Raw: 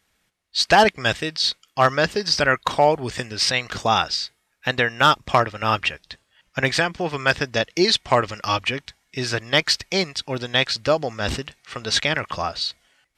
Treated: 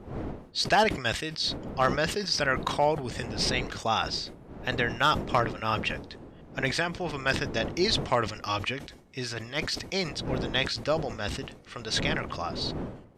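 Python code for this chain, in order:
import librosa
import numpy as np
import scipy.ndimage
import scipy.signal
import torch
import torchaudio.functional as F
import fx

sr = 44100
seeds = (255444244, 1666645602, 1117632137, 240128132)

y = fx.dmg_wind(x, sr, seeds[0], corner_hz=370.0, level_db=-32.0)
y = fx.transient(y, sr, attack_db=-11, sustain_db=2, at=(9.27, 9.76))
y = fx.sustainer(y, sr, db_per_s=100.0)
y = y * 10.0 ** (-8.0 / 20.0)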